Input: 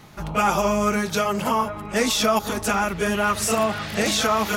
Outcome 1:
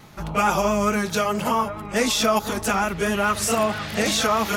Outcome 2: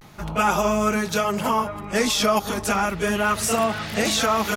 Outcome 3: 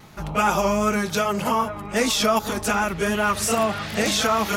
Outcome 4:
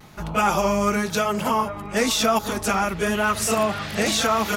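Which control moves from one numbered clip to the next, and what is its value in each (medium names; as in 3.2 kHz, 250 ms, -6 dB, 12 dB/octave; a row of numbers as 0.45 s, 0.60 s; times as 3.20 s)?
vibrato, rate: 4.6 Hz, 0.33 Hz, 2.6 Hz, 1 Hz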